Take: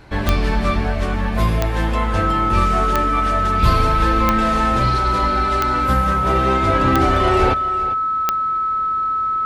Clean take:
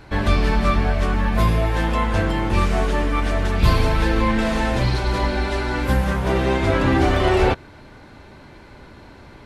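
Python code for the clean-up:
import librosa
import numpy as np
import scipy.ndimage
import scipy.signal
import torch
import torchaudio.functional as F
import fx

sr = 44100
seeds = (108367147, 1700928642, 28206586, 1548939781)

y = fx.fix_declick_ar(x, sr, threshold=10.0)
y = fx.notch(y, sr, hz=1300.0, q=30.0)
y = fx.fix_echo_inverse(y, sr, delay_ms=400, level_db=-14.5)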